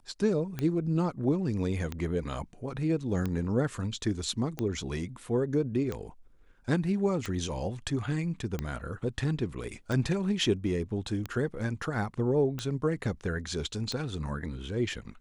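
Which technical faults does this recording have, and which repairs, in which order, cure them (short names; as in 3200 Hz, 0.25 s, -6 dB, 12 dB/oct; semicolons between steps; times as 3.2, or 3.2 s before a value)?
tick 45 rpm -19 dBFS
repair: de-click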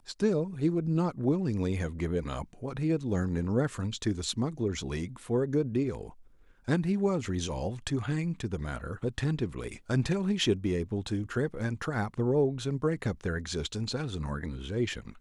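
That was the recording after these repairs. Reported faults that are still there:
none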